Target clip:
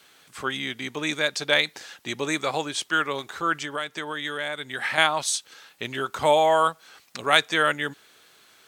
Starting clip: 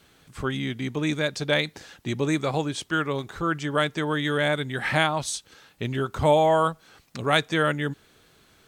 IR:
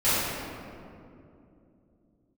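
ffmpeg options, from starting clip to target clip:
-filter_complex "[0:a]asettb=1/sr,asplit=3[a][b][c];[a]atrim=end=3.584[d];[b]atrim=start=3.58:end=4.98,asetpts=PTS-STARTPTS,afade=t=in:d=0.004:c=qsin,afade=t=out:st=1.396:d=0.004:c=qsin,acompressor=threshold=-28dB:ratio=6[e];[c]atrim=start=4.976[f];[d][e]acrossfade=d=0.004:c1=hsin:c2=qsin[g];[g][f]acrossfade=d=0.004:c1=qsin:c2=hsin,highpass=f=920:p=1,volume=5dB"

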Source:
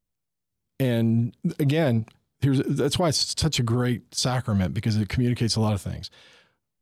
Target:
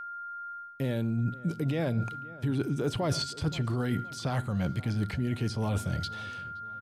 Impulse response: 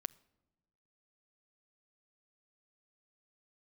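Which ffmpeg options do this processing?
-filter_complex "[0:a]acrossover=split=2800[a][b];[b]acompressor=threshold=-38dB:ratio=4:attack=1:release=60[c];[a][c]amix=inputs=2:normalize=0[d];[1:a]atrim=start_sample=2205,atrim=end_sample=6615[e];[d][e]afir=irnorm=-1:irlink=0,aeval=exprs='val(0)+0.00708*sin(2*PI*1400*n/s)':c=same,areverse,acompressor=threshold=-33dB:ratio=6,areverse,asplit=2[f][g];[g]adelay=521,lowpass=f=1.6k:p=1,volume=-18.5dB,asplit=2[h][i];[i]adelay=521,lowpass=f=1.6k:p=1,volume=0.45,asplit=2[j][k];[k]adelay=521,lowpass=f=1.6k:p=1,volume=0.45,asplit=2[l][m];[m]adelay=521,lowpass=f=1.6k:p=1,volume=0.45[n];[f][h][j][l][n]amix=inputs=5:normalize=0,volume=6dB"

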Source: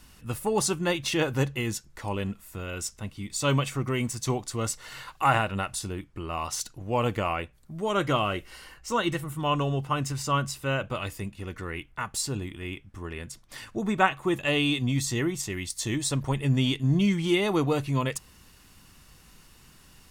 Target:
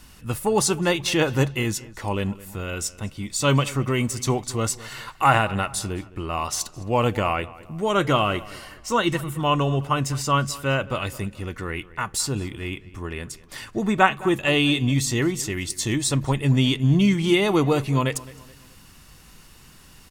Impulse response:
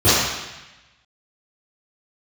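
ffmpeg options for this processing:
-filter_complex "[0:a]asplit=2[a][b];[b]adelay=213,lowpass=f=3.4k:p=1,volume=-19dB,asplit=2[c][d];[d]adelay=213,lowpass=f=3.4k:p=1,volume=0.43,asplit=2[e][f];[f]adelay=213,lowpass=f=3.4k:p=1,volume=0.43[g];[a][c][e][g]amix=inputs=4:normalize=0,volume=5dB"

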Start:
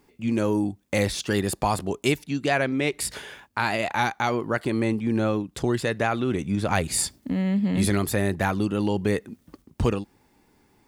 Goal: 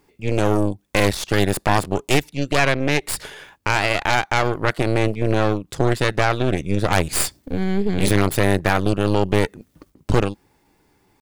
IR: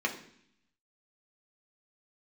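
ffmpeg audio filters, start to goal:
-af "aeval=exprs='0.473*(cos(1*acos(clip(val(0)/0.473,-1,1)))-cos(1*PI/2))+0.15*(cos(6*acos(clip(val(0)/0.473,-1,1)))-cos(6*PI/2))':c=same,equalizer=f=230:w=7.8:g=-10.5,atempo=0.97,volume=1.5dB"

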